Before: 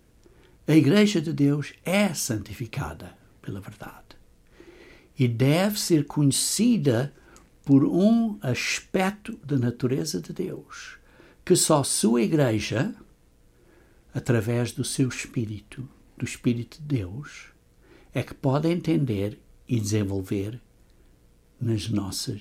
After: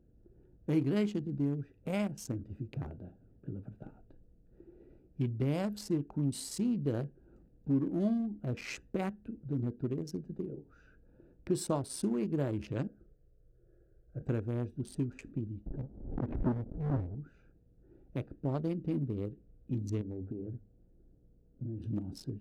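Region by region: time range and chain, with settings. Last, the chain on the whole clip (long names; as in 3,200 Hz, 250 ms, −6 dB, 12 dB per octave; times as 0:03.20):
0:12.87–0:14.22: phaser with its sweep stopped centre 900 Hz, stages 6 + double-tracking delay 43 ms −8 dB
0:15.66–0:17.15: each half-wave held at its own peak + low-pass filter 1,200 Hz 24 dB per octave + background raised ahead of every attack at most 82 dB per second
0:20.01–0:21.82: low-pass filter 1,500 Hz + mains-hum notches 50/100/150/200 Hz + downward compressor 12 to 1, threshold −27 dBFS
whole clip: adaptive Wiener filter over 41 samples; tilt shelving filter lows +4 dB, about 1,300 Hz; downward compressor 1.5 to 1, threshold −30 dBFS; level −8.5 dB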